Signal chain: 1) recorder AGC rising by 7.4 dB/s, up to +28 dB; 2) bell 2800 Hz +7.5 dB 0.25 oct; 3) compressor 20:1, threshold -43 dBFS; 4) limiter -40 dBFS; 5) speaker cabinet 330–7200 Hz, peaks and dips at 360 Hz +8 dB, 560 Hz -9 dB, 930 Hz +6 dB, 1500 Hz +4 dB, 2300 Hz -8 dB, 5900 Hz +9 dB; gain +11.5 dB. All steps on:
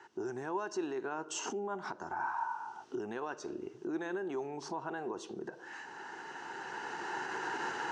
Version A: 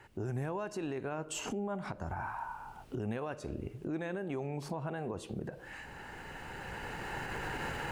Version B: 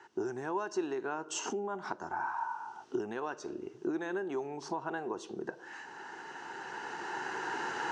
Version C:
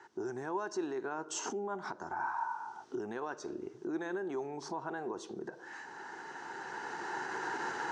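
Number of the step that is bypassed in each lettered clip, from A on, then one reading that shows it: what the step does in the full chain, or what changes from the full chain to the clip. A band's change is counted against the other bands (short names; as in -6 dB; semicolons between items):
5, 125 Hz band +16.0 dB; 4, crest factor change +2.5 dB; 2, 4 kHz band -2.0 dB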